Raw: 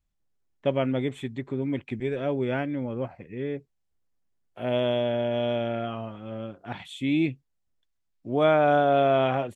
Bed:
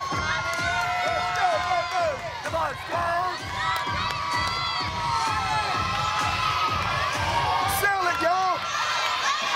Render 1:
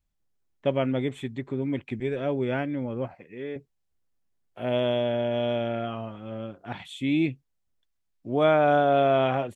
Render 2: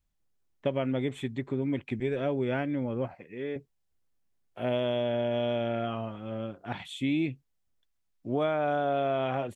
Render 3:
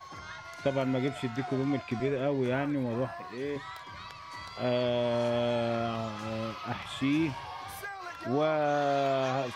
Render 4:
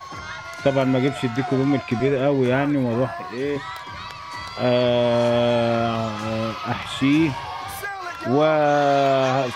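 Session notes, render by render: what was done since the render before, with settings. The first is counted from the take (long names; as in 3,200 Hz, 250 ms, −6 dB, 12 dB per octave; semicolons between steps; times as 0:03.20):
0:03.14–0:03.56: high-pass filter 410 Hz 6 dB per octave
downward compressor 10 to 1, threshold −24 dBFS, peak gain reduction 9 dB
mix in bed −17.5 dB
level +10 dB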